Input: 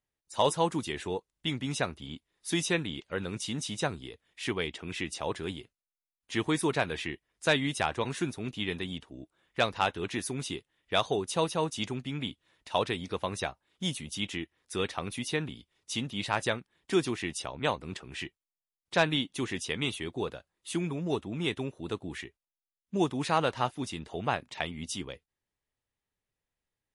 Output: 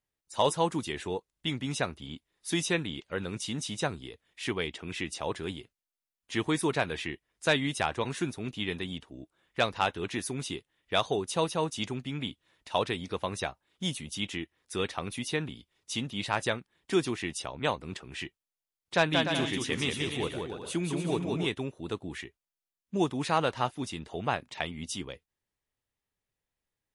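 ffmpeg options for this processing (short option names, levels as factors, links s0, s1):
-filter_complex "[0:a]asettb=1/sr,asplit=3[s0][s1][s2];[s0]atrim=end=18.954[s3];[s1]atrim=start=18.95:end=21.47,asetpts=PTS-STARTPTS,afade=t=in:d=0.004:c=qsin,afade=t=out:st=2.516:d=0.004:c=qsin,aecho=1:1:180|297|373|422.5|454.6:0.631|0.398|0.251|0.158|0.1,atrim=end_sample=111132[s4];[s2]atrim=start=21.466[s5];[s3][s4]acrossfade=d=0.004:c1=hsin:c2=qsin[s6];[s6][s5]acrossfade=d=0.004:c1=qsin:c2=hsin"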